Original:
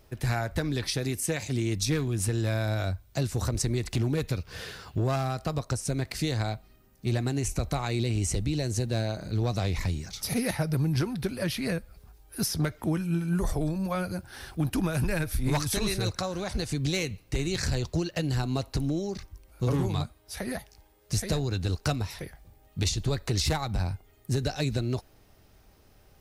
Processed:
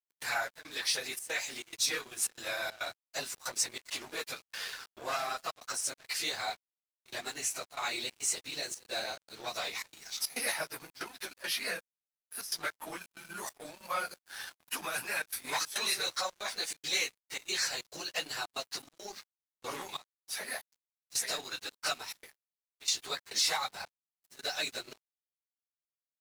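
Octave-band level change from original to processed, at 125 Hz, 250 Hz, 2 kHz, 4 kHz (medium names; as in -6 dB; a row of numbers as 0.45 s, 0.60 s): -34.0 dB, -22.5 dB, +1.0 dB, +1.5 dB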